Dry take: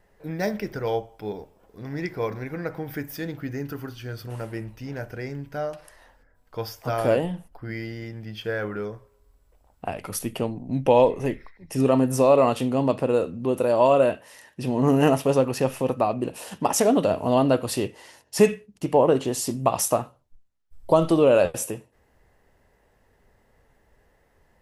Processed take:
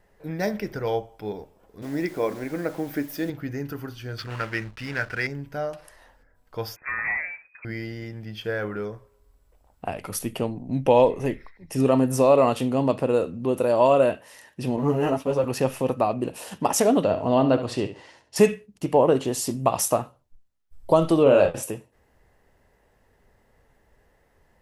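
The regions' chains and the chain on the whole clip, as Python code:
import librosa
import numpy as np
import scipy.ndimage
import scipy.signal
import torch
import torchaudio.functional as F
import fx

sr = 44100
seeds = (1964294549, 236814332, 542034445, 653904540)

y = fx.chain(x, sr, fx.peak_eq(hz=99.0, db=-14.0, octaves=0.63),
    fx.small_body(hz=(300.0, 590.0), ring_ms=25, db=7),
    fx.quant_dither(seeds[0], bits=8, dither='none'), at=(1.82, 3.3))
y = fx.chain(y, sr, fx.median_filter(points=5),
    fx.band_shelf(hz=2500.0, db=14.0, octaves=2.6),
    fx.backlash(play_db=-39.0), at=(4.18, 5.27))
y = fx.chain(y, sr, fx.low_shelf(hz=430.0, db=-8.0),
    fx.overload_stage(gain_db=23.0),
    fx.freq_invert(carrier_hz=2500), at=(6.76, 7.65))
y = fx.chain(y, sr, fx.law_mismatch(coded='A'),
    fx.high_shelf(hz=4400.0, db=-9.0),
    fx.ensemble(), at=(14.76, 15.44))
y = fx.chain(y, sr, fx.air_absorb(metres=100.0),
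    fx.room_flutter(wall_m=11.6, rt60_s=0.33), at=(17.03, 18.36))
y = fx.chain(y, sr, fx.lowpass(hz=11000.0, slope=12),
    fx.high_shelf(hz=5300.0, db=-10.0),
    fx.doubler(ms=30.0, db=-4.0), at=(21.23, 21.63))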